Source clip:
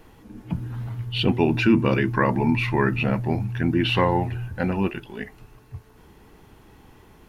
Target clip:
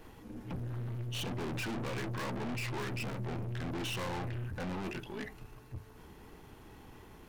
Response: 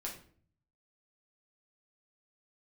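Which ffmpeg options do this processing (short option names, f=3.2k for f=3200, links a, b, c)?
-af "aeval=exprs='(tanh(56.2*val(0)+0.4)-tanh(0.4))/56.2':c=same,bandreject=f=50:t=h:w=6,bandreject=f=100:t=h:w=6,bandreject=f=150:t=h:w=6,bandreject=f=200:t=h:w=6,volume=-1dB"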